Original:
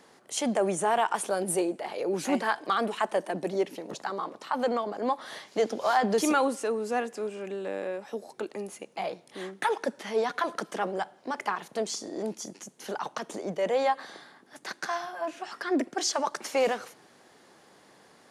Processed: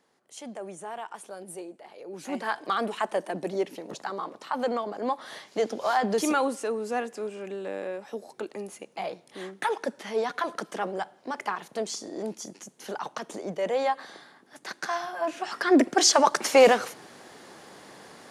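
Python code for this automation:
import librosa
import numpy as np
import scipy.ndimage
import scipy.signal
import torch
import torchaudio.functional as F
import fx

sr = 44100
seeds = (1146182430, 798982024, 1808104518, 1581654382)

y = fx.gain(x, sr, db=fx.line((2.06, -12.5), (2.56, -0.5), (14.64, -0.5), (15.92, 9.0)))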